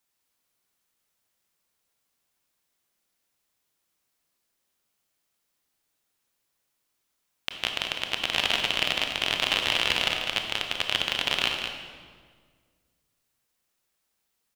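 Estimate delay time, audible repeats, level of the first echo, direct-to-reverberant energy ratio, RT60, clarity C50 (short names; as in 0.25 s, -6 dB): 0.201 s, 1, -7.5 dB, 2.0 dB, 1.7 s, 3.0 dB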